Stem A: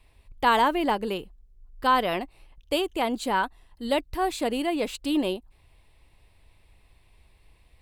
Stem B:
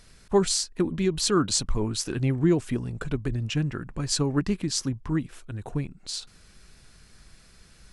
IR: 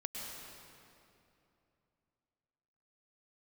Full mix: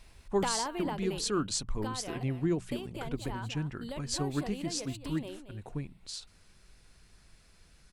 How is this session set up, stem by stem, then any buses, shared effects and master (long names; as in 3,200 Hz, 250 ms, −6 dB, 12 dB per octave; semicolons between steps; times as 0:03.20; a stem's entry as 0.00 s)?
+2.0 dB, 0.00 s, no send, echo send −19.5 dB, downward compressor 6 to 1, threshold −32 dBFS, peak gain reduction 15 dB; automatic ducking −9 dB, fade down 1.90 s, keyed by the second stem
−8.0 dB, 0.00 s, no send, no echo send, mains-hum notches 60/120/180 Hz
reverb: not used
echo: single-tap delay 228 ms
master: no processing